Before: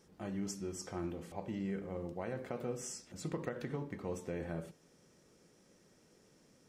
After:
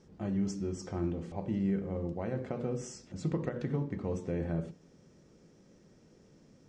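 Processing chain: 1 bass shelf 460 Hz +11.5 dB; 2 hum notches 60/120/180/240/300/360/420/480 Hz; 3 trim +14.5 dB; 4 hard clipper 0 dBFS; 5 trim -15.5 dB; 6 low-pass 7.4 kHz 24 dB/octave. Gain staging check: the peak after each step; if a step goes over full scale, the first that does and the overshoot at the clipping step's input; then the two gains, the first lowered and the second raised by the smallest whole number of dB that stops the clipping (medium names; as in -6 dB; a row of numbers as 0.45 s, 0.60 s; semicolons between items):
-18.5 dBFS, -19.5 dBFS, -5.0 dBFS, -5.0 dBFS, -20.5 dBFS, -20.5 dBFS; nothing clips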